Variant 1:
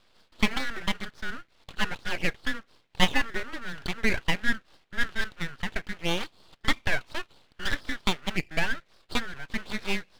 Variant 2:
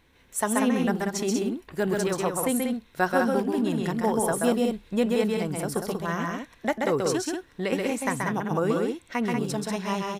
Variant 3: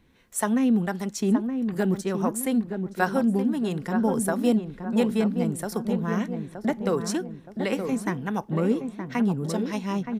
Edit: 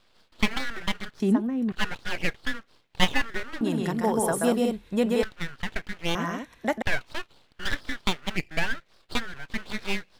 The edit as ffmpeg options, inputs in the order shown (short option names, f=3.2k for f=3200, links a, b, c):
-filter_complex "[1:a]asplit=2[a][b];[0:a]asplit=4[c][d][e][f];[c]atrim=end=1.202[g];[2:a]atrim=start=1.198:end=1.722[h];[d]atrim=start=1.718:end=3.612[i];[a]atrim=start=3.608:end=5.232[j];[e]atrim=start=5.228:end=6.152[k];[b]atrim=start=6.148:end=6.822[l];[f]atrim=start=6.818[m];[g][h]acrossfade=d=0.004:c1=hsin:c2=hsin[n];[n][i]acrossfade=d=0.004:c1=hsin:c2=hsin[o];[o][j]acrossfade=d=0.004:c1=hsin:c2=hsin[p];[p][k]acrossfade=d=0.004:c1=hsin:c2=hsin[q];[q][l]acrossfade=d=0.004:c1=hsin:c2=hsin[r];[r][m]acrossfade=d=0.004:c1=hsin:c2=hsin"